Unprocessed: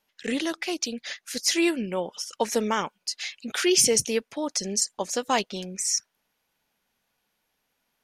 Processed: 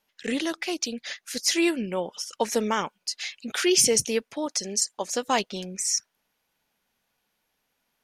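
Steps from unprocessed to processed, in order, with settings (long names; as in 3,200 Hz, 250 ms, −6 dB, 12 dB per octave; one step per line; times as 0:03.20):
0:04.46–0:05.15: low-shelf EQ 190 Hz −9.5 dB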